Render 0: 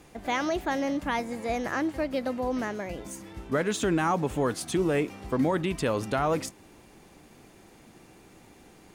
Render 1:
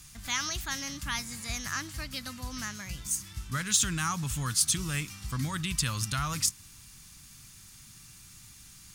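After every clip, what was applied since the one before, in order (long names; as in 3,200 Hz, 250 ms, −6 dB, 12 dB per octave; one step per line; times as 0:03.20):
drawn EQ curve 130 Hz 0 dB, 440 Hz −29 dB, 760 Hz −22 dB, 1,200 Hz −6 dB, 2,100 Hz −6 dB, 5,400 Hz +8 dB
level +4 dB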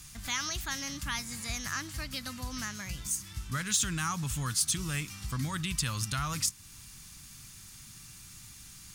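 in parallel at −1.5 dB: downward compressor, threshold −38 dBFS, peak gain reduction 17 dB
on the sum: soft clipping −11.5 dBFS, distortion −26 dB
level −3.5 dB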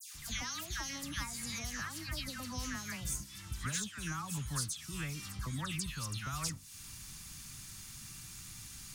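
downward compressor 6 to 1, threshold −37 dBFS, peak gain reduction 13 dB
all-pass dispersion lows, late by 147 ms, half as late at 2,000 Hz
level +1 dB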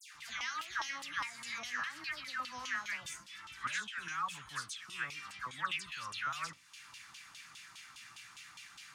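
flanger 0.92 Hz, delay 5.5 ms, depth 3.5 ms, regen +74%
auto-filter band-pass saw down 4.9 Hz 960–3,200 Hz
level +14 dB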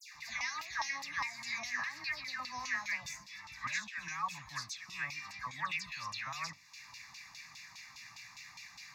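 phaser with its sweep stopped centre 2,100 Hz, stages 8
level +4.5 dB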